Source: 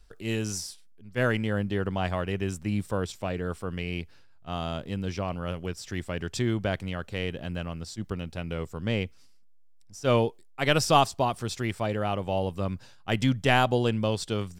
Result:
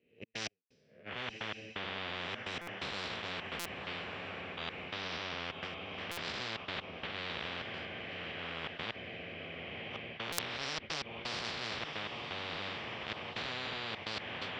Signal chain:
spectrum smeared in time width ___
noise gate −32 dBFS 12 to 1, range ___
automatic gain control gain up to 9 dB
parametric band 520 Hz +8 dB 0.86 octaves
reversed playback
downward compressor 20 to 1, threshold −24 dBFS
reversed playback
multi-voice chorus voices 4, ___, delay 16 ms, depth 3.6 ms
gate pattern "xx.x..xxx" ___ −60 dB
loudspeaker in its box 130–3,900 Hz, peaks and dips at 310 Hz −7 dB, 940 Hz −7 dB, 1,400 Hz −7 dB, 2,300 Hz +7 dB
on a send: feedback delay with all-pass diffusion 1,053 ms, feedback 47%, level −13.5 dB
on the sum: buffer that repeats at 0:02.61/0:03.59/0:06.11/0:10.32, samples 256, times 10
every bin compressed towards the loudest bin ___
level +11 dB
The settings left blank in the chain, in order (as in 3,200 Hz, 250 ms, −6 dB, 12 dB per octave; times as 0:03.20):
387 ms, −43 dB, 0.37 Hz, 128 BPM, 10 to 1